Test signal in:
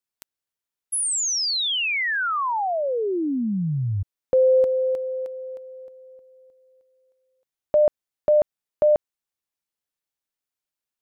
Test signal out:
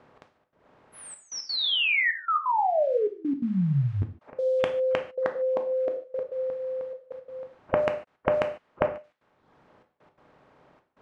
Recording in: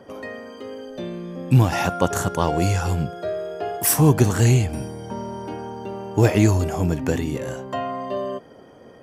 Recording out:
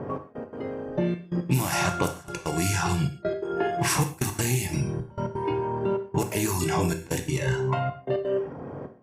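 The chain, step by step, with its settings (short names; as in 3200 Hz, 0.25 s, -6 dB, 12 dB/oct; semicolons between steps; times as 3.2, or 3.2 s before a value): per-bin compression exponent 0.4; spectral noise reduction 15 dB; low-pass opened by the level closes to 820 Hz, open at -9 dBFS; reverb removal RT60 0.67 s; tilt shelf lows -3 dB; compressor 5:1, threshold -30 dBFS; step gate "xx..x.xxxxx" 171 bpm -24 dB; non-linear reverb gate 0.17 s falling, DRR 5 dB; gain +6 dB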